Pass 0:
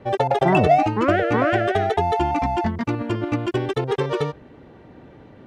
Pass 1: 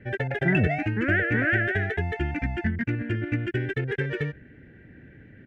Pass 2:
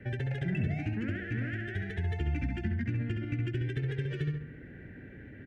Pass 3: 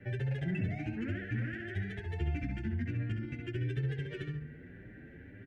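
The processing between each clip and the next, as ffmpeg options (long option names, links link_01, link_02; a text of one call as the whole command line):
ffmpeg -i in.wav -af "firequalizer=gain_entry='entry(100,0);entry(1100,-27);entry(1600,7);entry(3900,-16)':delay=0.05:min_phase=1" out.wav
ffmpeg -i in.wav -filter_complex "[0:a]acompressor=threshold=-27dB:ratio=6,asplit=2[link_01][link_02];[link_02]adelay=67,lowpass=frequency=3200:poles=1,volume=-3.5dB,asplit=2[link_03][link_04];[link_04]adelay=67,lowpass=frequency=3200:poles=1,volume=0.41,asplit=2[link_05][link_06];[link_06]adelay=67,lowpass=frequency=3200:poles=1,volume=0.41,asplit=2[link_07][link_08];[link_08]adelay=67,lowpass=frequency=3200:poles=1,volume=0.41,asplit=2[link_09][link_10];[link_10]adelay=67,lowpass=frequency=3200:poles=1,volume=0.41[link_11];[link_01][link_03][link_05][link_07][link_09][link_11]amix=inputs=6:normalize=0,acrossover=split=270|3000[link_12][link_13][link_14];[link_13]acompressor=threshold=-45dB:ratio=6[link_15];[link_12][link_15][link_14]amix=inputs=3:normalize=0" out.wav
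ffmpeg -i in.wav -filter_complex "[0:a]asplit=2[link_01][link_02];[link_02]adelay=8.2,afreqshift=1.7[link_03];[link_01][link_03]amix=inputs=2:normalize=1" out.wav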